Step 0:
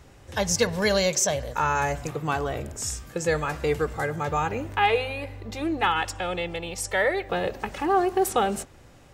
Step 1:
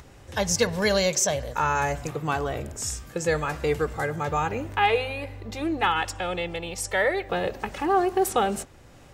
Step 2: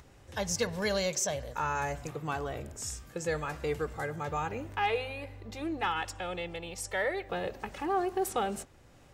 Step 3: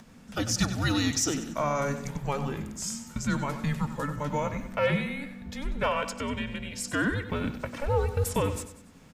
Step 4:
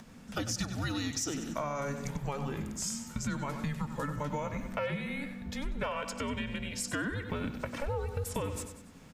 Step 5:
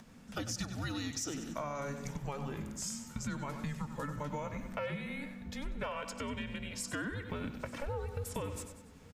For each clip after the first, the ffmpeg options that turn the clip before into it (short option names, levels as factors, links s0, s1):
-af "acompressor=mode=upward:threshold=0.00631:ratio=2.5"
-af "asoftclip=type=tanh:threshold=0.355,volume=0.422"
-filter_complex "[0:a]afreqshift=-290,asplit=2[s0][s1];[s1]aecho=0:1:95|190|285|380:0.266|0.106|0.0426|0.017[s2];[s0][s2]amix=inputs=2:normalize=0,volume=1.58"
-af "acompressor=threshold=0.0282:ratio=6"
-af "aecho=1:1:882:0.0668,volume=0.631"